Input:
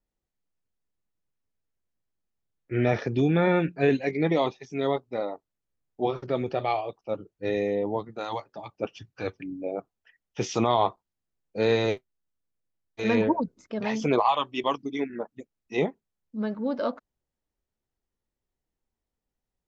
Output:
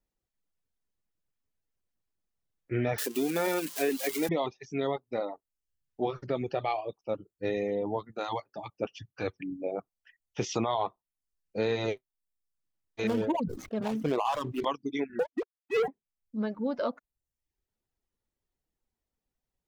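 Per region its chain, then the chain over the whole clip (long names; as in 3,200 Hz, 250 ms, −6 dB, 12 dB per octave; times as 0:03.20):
0:02.98–0:04.29: spike at every zero crossing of −18.5 dBFS + high-pass filter 240 Hz 24 dB per octave
0:13.07–0:14.65: running median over 25 samples + level that may fall only so fast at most 74 dB per second
0:15.19–0:15.88: three sine waves on the formant tracks + low-pass filter 1,400 Hz 6 dB per octave + leveller curve on the samples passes 3
whole clip: reverb reduction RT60 0.59 s; downward compressor 2.5 to 1, threshold −27 dBFS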